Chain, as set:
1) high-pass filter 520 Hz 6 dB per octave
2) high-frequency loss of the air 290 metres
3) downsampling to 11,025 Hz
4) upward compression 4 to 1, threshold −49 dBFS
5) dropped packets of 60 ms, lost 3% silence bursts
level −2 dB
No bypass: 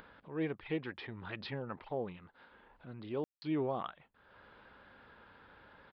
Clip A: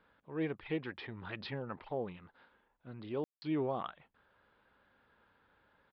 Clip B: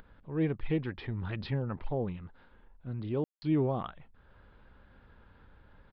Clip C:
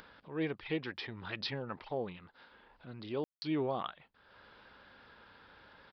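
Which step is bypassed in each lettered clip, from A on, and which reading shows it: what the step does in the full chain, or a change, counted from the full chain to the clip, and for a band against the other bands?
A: 4, change in momentary loudness spread −10 LU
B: 1, 125 Hz band +10.5 dB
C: 2, 4 kHz band +7.0 dB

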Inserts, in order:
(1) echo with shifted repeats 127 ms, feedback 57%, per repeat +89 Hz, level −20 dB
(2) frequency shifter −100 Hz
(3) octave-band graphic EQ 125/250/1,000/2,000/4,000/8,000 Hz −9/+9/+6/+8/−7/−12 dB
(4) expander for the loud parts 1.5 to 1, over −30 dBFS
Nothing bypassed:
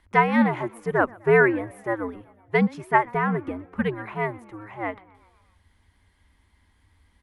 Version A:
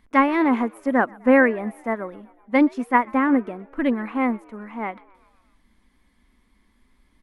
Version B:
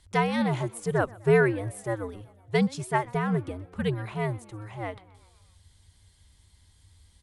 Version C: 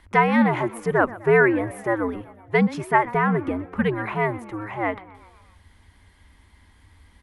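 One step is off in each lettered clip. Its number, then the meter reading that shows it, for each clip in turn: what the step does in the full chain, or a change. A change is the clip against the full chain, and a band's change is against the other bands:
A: 2, 250 Hz band +5.5 dB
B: 3, change in crest factor −2.5 dB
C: 4, change in momentary loudness spread −3 LU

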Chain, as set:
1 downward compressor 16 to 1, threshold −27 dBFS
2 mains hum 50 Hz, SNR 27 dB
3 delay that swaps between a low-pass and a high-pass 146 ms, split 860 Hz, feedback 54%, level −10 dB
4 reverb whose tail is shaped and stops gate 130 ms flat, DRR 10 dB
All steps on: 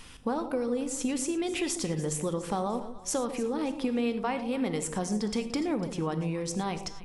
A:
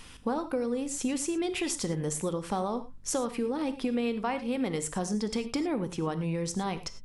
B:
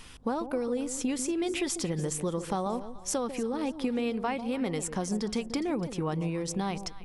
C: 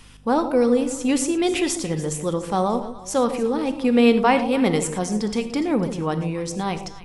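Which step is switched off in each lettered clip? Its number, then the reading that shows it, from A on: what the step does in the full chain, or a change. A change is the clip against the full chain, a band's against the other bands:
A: 3, echo-to-direct ratio −8.0 dB to −10.0 dB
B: 4, echo-to-direct ratio −8.0 dB to −13.0 dB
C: 1, average gain reduction 7.0 dB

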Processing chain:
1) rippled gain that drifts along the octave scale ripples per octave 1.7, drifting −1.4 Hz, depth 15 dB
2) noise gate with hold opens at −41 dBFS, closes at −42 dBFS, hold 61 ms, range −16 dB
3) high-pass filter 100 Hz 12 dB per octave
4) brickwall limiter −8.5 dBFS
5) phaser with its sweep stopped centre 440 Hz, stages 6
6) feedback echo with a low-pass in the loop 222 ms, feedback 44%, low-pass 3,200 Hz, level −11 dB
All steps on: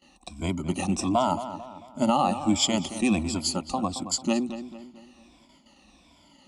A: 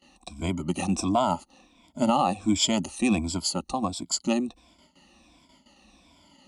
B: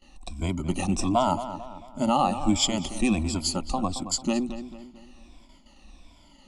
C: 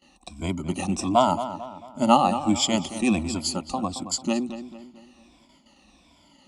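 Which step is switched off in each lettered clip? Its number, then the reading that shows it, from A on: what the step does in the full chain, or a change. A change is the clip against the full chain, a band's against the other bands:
6, change in momentary loudness spread −6 LU
3, 125 Hz band +2.0 dB
4, change in crest factor +4.0 dB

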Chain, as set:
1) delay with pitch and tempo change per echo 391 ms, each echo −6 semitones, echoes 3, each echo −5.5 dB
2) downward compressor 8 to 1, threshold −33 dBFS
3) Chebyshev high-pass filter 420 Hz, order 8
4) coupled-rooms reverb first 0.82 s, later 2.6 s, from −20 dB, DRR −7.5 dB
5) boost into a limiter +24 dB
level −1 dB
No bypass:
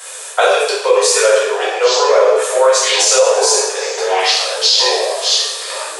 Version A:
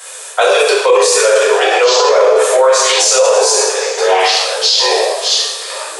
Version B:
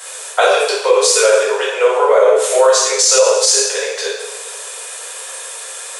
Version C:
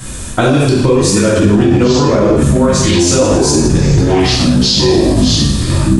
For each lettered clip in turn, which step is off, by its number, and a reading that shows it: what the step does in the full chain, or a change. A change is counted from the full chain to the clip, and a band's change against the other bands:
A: 2, average gain reduction 5.0 dB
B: 1, 4 kHz band −4.5 dB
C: 3, 500 Hz band +2.5 dB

